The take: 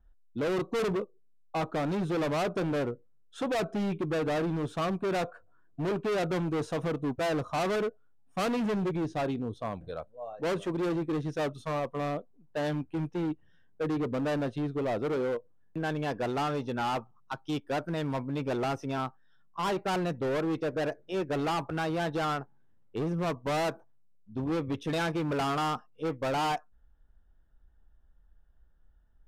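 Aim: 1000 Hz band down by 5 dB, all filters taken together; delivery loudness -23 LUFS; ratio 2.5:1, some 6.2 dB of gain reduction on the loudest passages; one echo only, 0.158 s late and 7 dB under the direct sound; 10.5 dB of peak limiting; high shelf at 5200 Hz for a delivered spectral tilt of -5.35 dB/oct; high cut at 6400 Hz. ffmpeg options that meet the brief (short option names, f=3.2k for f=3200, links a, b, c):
-af "lowpass=6.4k,equalizer=f=1k:t=o:g=-7.5,highshelf=f=5.2k:g=5.5,acompressor=threshold=-38dB:ratio=2.5,alimiter=level_in=14dB:limit=-24dB:level=0:latency=1,volume=-14dB,aecho=1:1:158:0.447,volume=21dB"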